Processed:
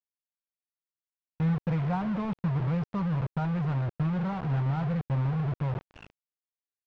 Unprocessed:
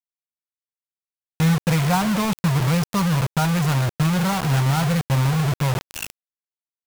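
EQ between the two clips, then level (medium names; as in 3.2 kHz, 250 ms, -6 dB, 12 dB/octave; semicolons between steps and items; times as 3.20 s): tape spacing loss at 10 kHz 44 dB; -7.5 dB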